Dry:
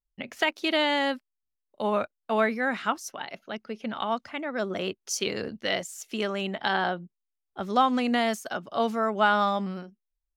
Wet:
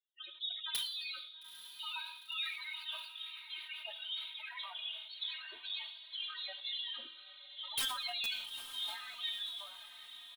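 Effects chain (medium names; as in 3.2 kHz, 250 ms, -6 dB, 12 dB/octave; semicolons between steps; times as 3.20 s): fade out at the end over 2.01 s; spectral gate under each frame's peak -20 dB weak; high-pass 590 Hz 6 dB/octave; resonant high shelf 5 kHz -11 dB, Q 3; comb 3.2 ms, depth 44%; in parallel at +0.5 dB: compression 12:1, threshold -44 dBFS, peak gain reduction 18 dB; on the sum: loudest bins only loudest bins 8; integer overflow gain 27 dB; flange 0.39 Hz, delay 9 ms, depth 6.6 ms, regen +79%; on a send: echo that smears into a reverb 904 ms, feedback 47%, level -11 dB; on the sum: plate-style reverb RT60 0.93 s, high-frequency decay 0.95×, DRR 11.5 dB; decay stretcher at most 58 dB/s; trim +3.5 dB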